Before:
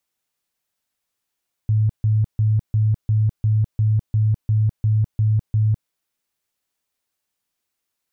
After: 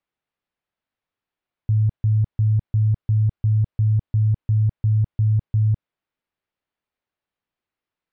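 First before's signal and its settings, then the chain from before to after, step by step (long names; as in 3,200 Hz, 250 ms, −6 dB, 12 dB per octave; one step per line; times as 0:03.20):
tone bursts 108 Hz, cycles 22, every 0.35 s, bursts 12, −14 dBFS
high-frequency loss of the air 340 metres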